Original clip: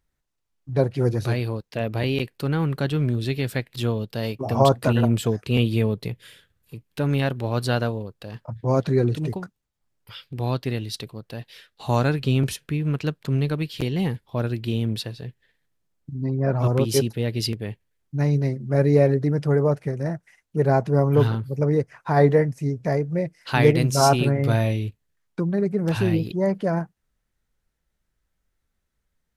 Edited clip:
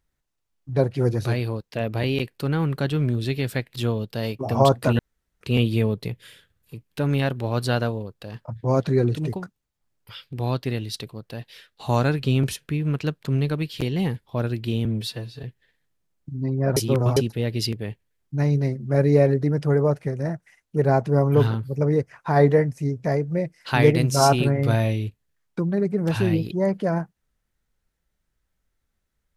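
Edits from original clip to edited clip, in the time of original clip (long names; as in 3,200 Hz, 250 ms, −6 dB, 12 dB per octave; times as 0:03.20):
0:04.99–0:05.41: fill with room tone
0:14.85–0:15.24: time-stretch 1.5×
0:16.57–0:16.97: reverse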